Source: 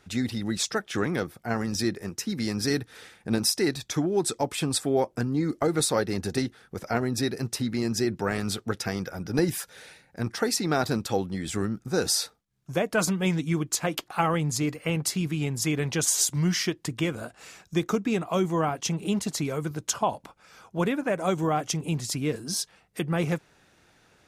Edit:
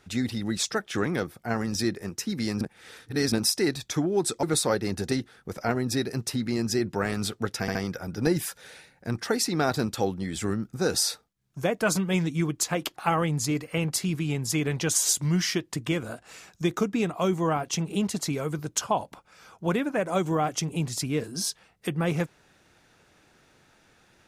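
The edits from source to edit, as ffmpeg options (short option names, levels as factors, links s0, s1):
-filter_complex "[0:a]asplit=6[s0][s1][s2][s3][s4][s5];[s0]atrim=end=2.612[s6];[s1]atrim=start=2.608:end=3.322,asetpts=PTS-STARTPTS,areverse[s7];[s2]atrim=start=3.318:end=4.432[s8];[s3]atrim=start=5.688:end=8.942[s9];[s4]atrim=start=8.868:end=8.942[s10];[s5]atrim=start=8.868[s11];[s6][s7]acrossfade=d=0.004:c1=hsin:c2=hsin[s12];[s12][s8]acrossfade=d=0.004:c1=hsin:c2=hsin[s13];[s13][s9]acrossfade=d=0.004:c1=hsin:c2=hsin[s14];[s14][s10]acrossfade=d=0.004:c1=hsin:c2=hsin[s15];[s15][s11]acrossfade=d=0.004:c1=hsin:c2=hsin"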